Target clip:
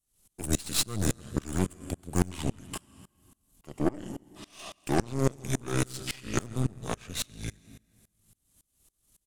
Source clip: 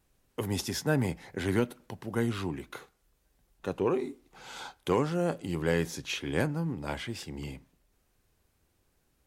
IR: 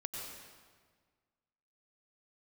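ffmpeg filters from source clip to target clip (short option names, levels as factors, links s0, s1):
-filter_complex "[0:a]asetrate=34006,aresample=44100,atempo=1.29684,bass=f=250:g=4,treble=f=4000:g=10,asplit=2[s0][s1];[1:a]atrim=start_sample=2205[s2];[s1][s2]afir=irnorm=-1:irlink=0,volume=0.531[s3];[s0][s3]amix=inputs=2:normalize=0,aexciter=amount=2:drive=2.5:freq=2800,aeval=exprs='0.398*(cos(1*acos(clip(val(0)/0.398,-1,1)))-cos(1*PI/2))+0.0562*(cos(8*acos(clip(val(0)/0.398,-1,1)))-cos(8*PI/2))':c=same,aeval=exprs='val(0)*pow(10,-26*if(lt(mod(-3.6*n/s,1),2*abs(-3.6)/1000),1-mod(-3.6*n/s,1)/(2*abs(-3.6)/1000),(mod(-3.6*n/s,1)-2*abs(-3.6)/1000)/(1-2*abs(-3.6)/1000))/20)':c=same"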